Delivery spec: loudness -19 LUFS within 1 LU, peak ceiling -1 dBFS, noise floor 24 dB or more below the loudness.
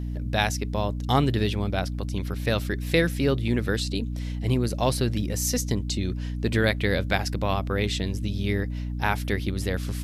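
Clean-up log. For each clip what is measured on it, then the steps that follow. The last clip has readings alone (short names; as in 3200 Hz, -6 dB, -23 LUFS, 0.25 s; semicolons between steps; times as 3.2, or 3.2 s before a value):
hum 60 Hz; harmonics up to 300 Hz; hum level -28 dBFS; loudness -26.0 LUFS; peak -7.0 dBFS; loudness target -19.0 LUFS
-> de-hum 60 Hz, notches 5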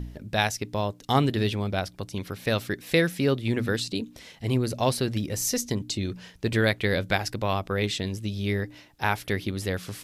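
hum none; loudness -27.5 LUFS; peak -6.5 dBFS; loudness target -19.0 LUFS
-> gain +8.5 dB; limiter -1 dBFS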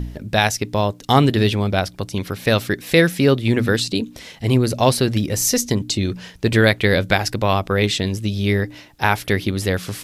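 loudness -19.0 LUFS; peak -1.0 dBFS; noise floor -44 dBFS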